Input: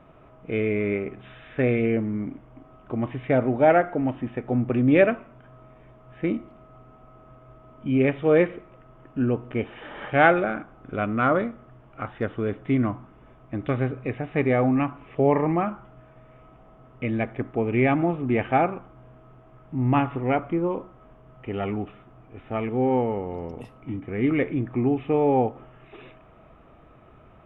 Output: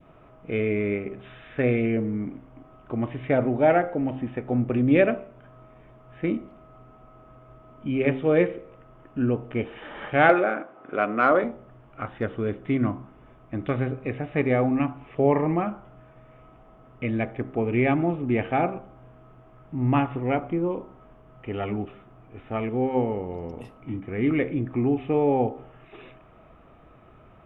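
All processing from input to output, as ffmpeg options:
-filter_complex "[0:a]asettb=1/sr,asplit=3[a][b][c];[a]atrim=end=10.294[d];[b]atrim=start=10.29:end=11.44,asetpts=PTS-STARTPTS,afade=t=in:d=0.004:c=qsin,afade=t=out:st=1.146:d=0.004:c=qsin,highpass=360,lowpass=2.7k,acontrast=30[e];[c]atrim=start=11.436[f];[d][e]acrossfade=d=0.004:c1=hsin:c2=qsin[g];[g][f]acrossfade=d=0.004:c1=qsin:c2=hsin,bandreject=f=65.62:t=h:w=4,bandreject=f=131.24:t=h:w=4,bandreject=f=196.86:t=h:w=4,bandreject=f=262.48:t=h:w=4,bandreject=f=328.1:t=h:w=4,bandreject=f=393.72:t=h:w=4,bandreject=f=459.34:t=h:w=4,bandreject=f=524.96:t=h:w=4,bandreject=f=590.58:t=h:w=4,bandreject=f=656.2:t=h:w=4,bandreject=f=721.82:t=h:w=4,bandreject=f=787.44:t=h:w=4,bandreject=f=853.06:t=h:w=4,bandreject=f=918.68:t=h:w=4,bandreject=f=984.3:t=h:w=4,bandreject=f=1.04992k:t=h:w=4,adynamicequalizer=threshold=0.0126:dfrequency=1200:dqfactor=0.83:tfrequency=1200:tqfactor=0.83:attack=5:release=100:ratio=0.375:range=2.5:mode=cutabove:tftype=bell"

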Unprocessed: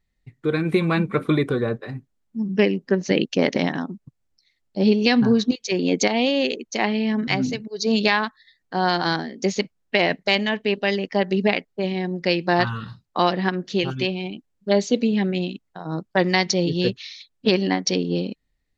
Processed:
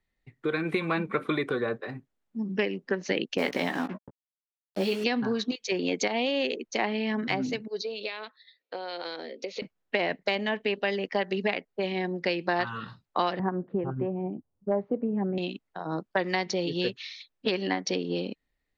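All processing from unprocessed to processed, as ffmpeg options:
-filter_complex "[0:a]asettb=1/sr,asplit=3[a][b][c];[a]atrim=end=3.384[d];[b]atrim=start=3.38:end=5.04,asetpts=PTS-STARTPTS,afade=t=in:d=0.004:c=qsin,afade=t=out:st=1.656:d=0.004:c=qsin,acrusher=bits=5:mix=0:aa=0.5,asplit=2[e][f];[f]adelay=16,volume=-6dB[g];[e][g]amix=inputs=2:normalize=0,atrim=end_sample=73206[h];[c]atrim=start=5.036[i];[d][h]acrossfade=d=0.004:c1=hsin:c2=qsin[j];[j][i]acrossfade=d=0.004:c1=qsin:c2=hsin,asettb=1/sr,asplit=3[k][l][m];[k]atrim=end=7.814[n];[l]atrim=start=7.81:end=9.62,asetpts=PTS-STARTPTS,afade=t=in:d=0.004:c=qsin,afade=t=out:st=1.806:d=0.004:c=qsin,acompressor=threshold=-27dB:ratio=10:attack=3.2:release=140:knee=1:detection=peak,highpass=420,equalizer=f=510:t=q:w=4:g=10,equalizer=f=800:t=q:w=4:g=-8,equalizer=f=1.1k:t=q:w=4:g=-7,equalizer=f=1.7k:t=q:w=4:g=-9,equalizer=f=2.5k:t=q:w=4:g=5,equalizer=f=4k:t=q:w=4:g=5,lowpass=f=5.1k:w=0.5412,lowpass=f=5.1k:w=1.3066[o];[m]atrim=start=9.616[p];[n][o]acrossfade=d=0.004:c1=hsin:c2=qsin[q];[q][p]acrossfade=d=0.004:c1=qsin:c2=hsin,asettb=1/sr,asplit=3[r][s][t];[r]atrim=end=13.394[u];[s]atrim=start=13.39:end=15.38,asetpts=PTS-STARTPTS,afade=t=in:d=0.004:c=qsin,afade=t=out:st=1.986:d=0.004:c=qsin,lowpass=f=1.1k:w=0.5412,lowpass=f=1.1k:w=1.3066,equalizer=f=100:w=1.1:g=14.5[v];[t]atrim=start=15.376[w];[u][v]acrossfade=d=0.004:c1=hsin:c2=qsin[x];[x][w]acrossfade=d=0.004:c1=qsin:c2=hsin,bass=f=250:g=-8,treble=f=4k:g=-8,acrossover=split=130|970[y][z][aa];[y]acompressor=threshold=-51dB:ratio=4[ab];[z]acompressor=threshold=-27dB:ratio=4[ac];[aa]acompressor=threshold=-29dB:ratio=4[ad];[ab][ac][ad]amix=inputs=3:normalize=0"

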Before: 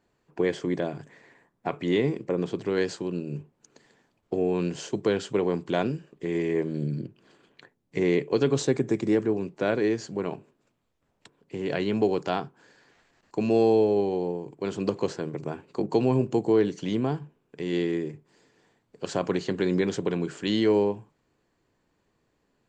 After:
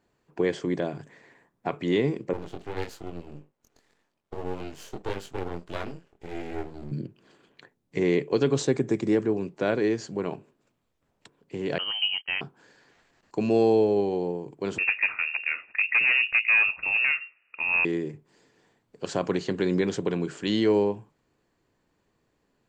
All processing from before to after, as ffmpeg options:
-filter_complex "[0:a]asettb=1/sr,asplit=3[a][b][c];[a]atrim=end=2.334[d];[b]atrim=start=2.33:end=6.92,asetpts=PTS-STARTPTS,afade=t=in:d=0.004:c=qsin,afade=t=out:st=4.586:d=0.004:c=qsin,highpass=f=200:p=1,flanger=delay=20:depth=3.3:speed=1.7,aeval=exprs='max(val(0),0)':c=same[e];[c]atrim=start=6.916[f];[d][e]acrossfade=d=0.004:c1=hsin:c2=qsin[g];[g][f]acrossfade=d=0.004:c1=qsin:c2=hsin,asettb=1/sr,asplit=3[h][i][j];[h]atrim=end=11.784[k];[i]atrim=start=11.78:end=12.41,asetpts=PTS-STARTPTS,afade=t=in:d=0.004:c=qsin,afade=t=out:st=0.626:d=0.004:c=qsin,lowshelf=f=480:g=-6.5,agate=range=-22dB:threshold=-37dB:ratio=16:release=100:detection=peak,lowpass=f=2.8k:t=q:w=0.5098,lowpass=f=2.8k:t=q:w=0.6013,lowpass=f=2.8k:t=q:w=0.9,lowpass=f=2.8k:t=q:w=2.563,afreqshift=-3300[l];[j]atrim=start=12.406[m];[k][l]acrossfade=d=0.004:c1=hsin:c2=qsin[n];[n][m]acrossfade=d=0.004:c1=qsin:c2=hsin,asettb=1/sr,asplit=3[o][p][q];[o]atrim=end=14.784[r];[p]atrim=start=14.78:end=17.85,asetpts=PTS-STARTPTS,afade=t=in:d=0.004:c=qsin,afade=t=out:st=3.066:d=0.004:c=qsin,equalizer=f=1.1k:t=o:w=2.6:g=8.5,asoftclip=type=hard:threshold=-17dB,lowpass=f=2.5k:t=q:w=0.5098,lowpass=f=2.5k:t=q:w=0.6013,lowpass=f=2.5k:t=q:w=0.9,lowpass=f=2.5k:t=q:w=2.563,afreqshift=-2900[s];[q]atrim=start=17.846[t];[r][s]acrossfade=d=0.004:c1=hsin:c2=qsin[u];[u][t]acrossfade=d=0.004:c1=qsin:c2=hsin"

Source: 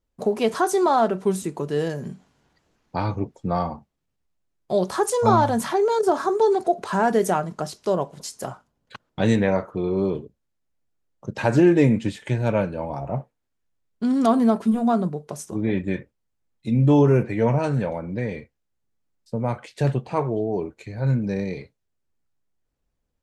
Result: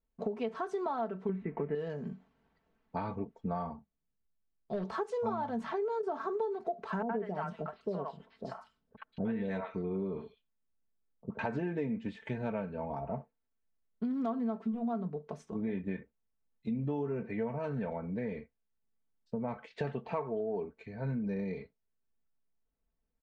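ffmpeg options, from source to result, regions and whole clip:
-filter_complex "[0:a]asettb=1/sr,asplit=3[a][b][c];[a]atrim=end=1.294[d];[b]atrim=start=1.29:end=1.75,asetpts=PTS-STARTPTS,afade=t=in:d=0.004:c=qsin,afade=t=out:st=0.456:d=0.004:c=qsin,tiltshelf=f=1.2k:g=7.5,aeval=exprs='sgn(val(0))*max(abs(val(0))-0.00355,0)':c=same,lowpass=f=2.1k:t=q:w=5.5[e];[c]atrim=start=1.746[f];[d][e]acrossfade=d=0.004:c1=hsin:c2=qsin[g];[g][f]acrossfade=d=0.004:c1=qsin:c2=hsin,asettb=1/sr,asplit=3[h][i][j];[h]atrim=end=3.714[k];[i]atrim=start=3.71:end=4.85,asetpts=PTS-STARTPTS,afade=t=in:d=0.004:c=qsin,afade=t=out:st=1.136:d=0.004:c=qsin,equalizer=f=1k:w=0.33:g=-5.5,volume=19.5dB,asoftclip=hard,volume=-19.5dB[l];[j]atrim=start=4.846[m];[k][l]acrossfade=d=0.004:c1=hsin:c2=qsin[n];[n][m]acrossfade=d=0.004:c1=qsin:c2=hsin,asettb=1/sr,asplit=3[o][p][q];[o]atrim=end=7.024[r];[p]atrim=start=7.02:end=11.39,asetpts=PTS-STARTPTS,afade=t=in:d=0.004:c=qsin,afade=t=out:st=4.366:d=0.004:c=qsin,acrossover=split=5600[s][t];[t]acompressor=threshold=-47dB:ratio=4:attack=1:release=60[u];[s][u]amix=inputs=2:normalize=0,equalizer=f=6.6k:w=2.8:g=-7,acrossover=split=670|3100[v][w][x];[w]adelay=70[y];[x]adelay=220[z];[v][y][z]amix=inputs=3:normalize=0,atrim=end_sample=192717[aa];[q]atrim=start=11.386[ab];[r][aa]acrossfade=d=0.004:c1=hsin:c2=qsin[ac];[ac][ab]acrossfade=d=0.004:c1=qsin:c2=hsin,asettb=1/sr,asplit=3[ad][ae][af];[ad]atrim=end=19.704[ag];[ae]atrim=start=19.7:end=20.65,asetpts=PTS-STARTPTS,afade=t=in:d=0.004:c=qsin,afade=t=out:st=0.946:d=0.004:c=qsin,lowpass=8.3k,lowshelf=f=330:g=-7,acontrast=64[ah];[af]atrim=start=20.646[ai];[ag][ah]acrossfade=d=0.004:c1=hsin:c2=qsin[aj];[aj][ai]acrossfade=d=0.004:c1=qsin:c2=hsin,lowpass=2.6k,aecho=1:1:4.5:0.59,acompressor=threshold=-23dB:ratio=6,volume=-8.5dB"

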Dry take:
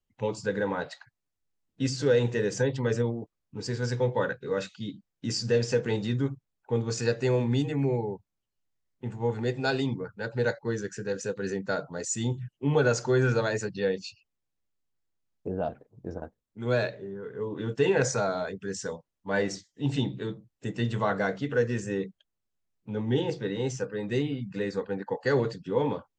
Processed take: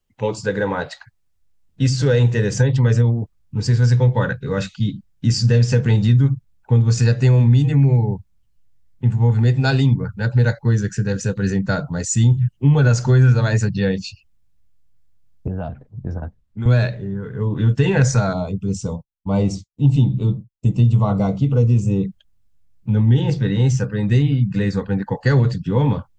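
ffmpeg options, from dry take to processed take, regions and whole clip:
-filter_complex "[0:a]asettb=1/sr,asplit=3[a][b][c];[a]atrim=end=15.474[d];[b]atrim=start=15.47:end=16.66,asetpts=PTS-STARTPTS,afade=t=in:d=0.004:c=qsin,afade=t=out:st=1.186:d=0.004:c=qsin,lowpass=f=3.5k:p=1,acrossover=split=240|690[e][f][g];[e]acompressor=threshold=-46dB:ratio=4[h];[f]acompressor=threshold=-41dB:ratio=4[i];[g]acompressor=threshold=-39dB:ratio=4[j];[h][i][j]amix=inputs=3:normalize=0[k];[c]atrim=start=16.656[l];[d][k]acrossfade=d=0.004:c1=hsin:c2=qsin[m];[m][l]acrossfade=d=0.004:c1=qsin:c2=hsin,asettb=1/sr,asplit=3[n][o][p];[n]atrim=end=18.334[q];[o]atrim=start=18.33:end=22.05,asetpts=PTS-STARTPTS,afade=t=in:d=0.004:c=qsin,afade=t=out:st=3.716:d=0.004:c=qsin,agate=range=-33dB:threshold=-49dB:ratio=3:release=100:detection=peak,asuperstop=centerf=1700:order=4:qfactor=1.5,equalizer=f=4.1k:w=0.59:g=-7[r];[p]atrim=start=22.046[s];[q][r]acrossfade=d=0.004:c1=hsin:c2=qsin[t];[t][s]acrossfade=d=0.004:c1=qsin:c2=hsin,asubboost=boost=9:cutoff=130,acompressor=threshold=-20dB:ratio=3,volume=8.5dB"

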